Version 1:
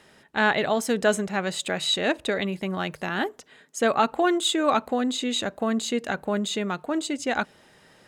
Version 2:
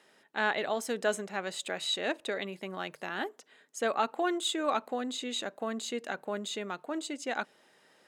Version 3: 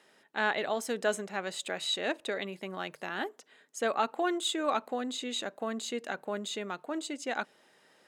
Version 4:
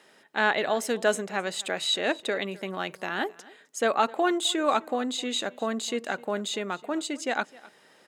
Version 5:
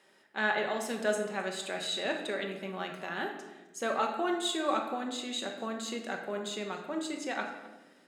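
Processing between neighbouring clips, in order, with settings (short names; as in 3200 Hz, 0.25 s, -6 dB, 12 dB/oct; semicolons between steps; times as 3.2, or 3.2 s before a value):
HPF 270 Hz 12 dB/oct; gain -7.5 dB
nothing audible
echo 0.259 s -22 dB; gain +5.5 dB
shoebox room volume 560 m³, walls mixed, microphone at 1.1 m; gain -8 dB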